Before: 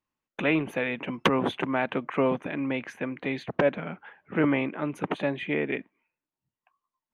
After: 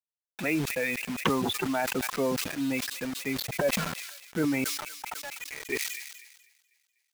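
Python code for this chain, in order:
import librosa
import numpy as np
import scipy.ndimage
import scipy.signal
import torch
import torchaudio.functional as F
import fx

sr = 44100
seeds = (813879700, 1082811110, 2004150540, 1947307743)

p1 = fx.bin_expand(x, sr, power=2.0)
p2 = fx.over_compress(p1, sr, threshold_db=-34.0, ratio=-1.0)
p3 = p1 + (p2 * librosa.db_to_amplitude(1.5))
p4 = fx.ladder_highpass(p3, sr, hz=710.0, resonance_pct=35, at=(4.64, 5.69))
p5 = fx.quant_dither(p4, sr, seeds[0], bits=6, dither='none')
p6 = p5 + fx.echo_wet_highpass(p5, sr, ms=247, feedback_pct=57, hz=3300.0, wet_db=-16, dry=0)
p7 = fx.sustainer(p6, sr, db_per_s=47.0)
y = p7 * librosa.db_to_amplitude(-3.0)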